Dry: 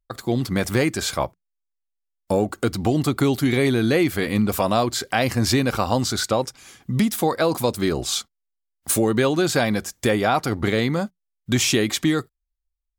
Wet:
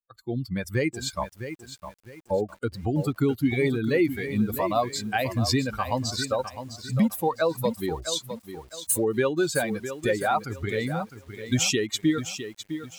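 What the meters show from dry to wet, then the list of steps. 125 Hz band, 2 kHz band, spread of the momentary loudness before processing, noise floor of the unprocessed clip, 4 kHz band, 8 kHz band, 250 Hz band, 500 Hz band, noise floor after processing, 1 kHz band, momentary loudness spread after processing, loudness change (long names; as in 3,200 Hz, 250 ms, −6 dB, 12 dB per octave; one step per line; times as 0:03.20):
−5.0 dB, −5.0 dB, 6 LU, −79 dBFS, −5.5 dB, −4.5 dB, −5.0 dB, −4.5 dB, −59 dBFS, −4.5 dB, 12 LU, −5.0 dB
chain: spectral dynamics exaggerated over time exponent 2
feedback echo at a low word length 657 ms, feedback 35%, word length 8 bits, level −10 dB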